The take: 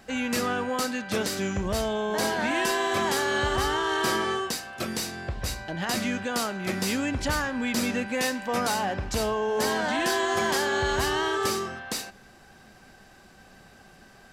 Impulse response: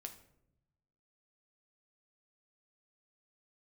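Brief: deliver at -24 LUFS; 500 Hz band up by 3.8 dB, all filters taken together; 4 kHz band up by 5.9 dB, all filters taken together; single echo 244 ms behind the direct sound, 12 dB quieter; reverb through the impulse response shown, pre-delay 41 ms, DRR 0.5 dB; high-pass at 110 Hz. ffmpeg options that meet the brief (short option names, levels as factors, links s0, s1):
-filter_complex "[0:a]highpass=110,equalizer=f=500:t=o:g=5,equalizer=f=4000:t=o:g=7.5,aecho=1:1:244:0.251,asplit=2[s0][s1];[1:a]atrim=start_sample=2205,adelay=41[s2];[s1][s2]afir=irnorm=-1:irlink=0,volume=1.58[s3];[s0][s3]amix=inputs=2:normalize=0,volume=0.75"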